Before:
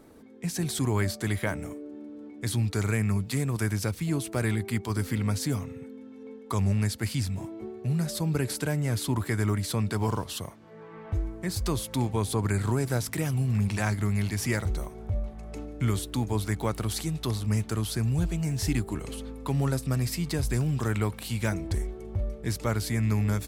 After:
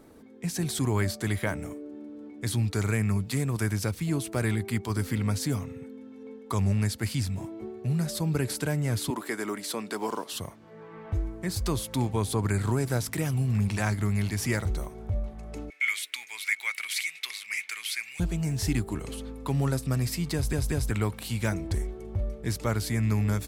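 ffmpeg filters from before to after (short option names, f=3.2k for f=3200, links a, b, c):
-filter_complex "[0:a]asettb=1/sr,asplit=3[a][b][c];[a]atrim=end=9.104[d];[b]atrim=start=9.1:end=10.33,asetpts=PTS-STARTPTS,afade=t=in:d=0.004:c=qsin,afade=t=out:st=1.226:d=0.004:c=qsin,highpass=f=250:w=0.5412,highpass=f=250:w=1.3066[e];[c]atrim=start=10.326[f];[d][e]acrossfade=d=0.004:c1=hsin:c2=qsin[g];[g][f]acrossfade=d=0.004:c1=qsin:c2=hsin,asettb=1/sr,asplit=3[h][i][j];[h]atrim=end=15.704[k];[i]atrim=start=15.7:end=18.2,asetpts=PTS-STARTPTS,afade=t=in:d=0.004:c=qsin,afade=t=out:st=2.496:d=0.004:c=qsin,highpass=f=2.2k:t=q:w=10[l];[j]atrim=start=18.196[m];[k][l]acrossfade=d=0.004:c1=hsin:c2=qsin[n];[n][m]acrossfade=d=0.004:c1=qsin:c2=hsin,asplit=4[o][p][q][r];[o]atrim=end=20.532[s];[p]atrim=start=20.338:end=20.532[t];[q]atrim=start=20.338:end=20.532[u];[r]atrim=start=20.908[v];[s][t]acrossfade=d=0.004:c1=hsin:c2=hsin[w];[w][u]acrossfade=d=0.004:c1=hsin:c2=hsin[x];[x][v]acrossfade=d=0.004:c1=hsin:c2=hsin"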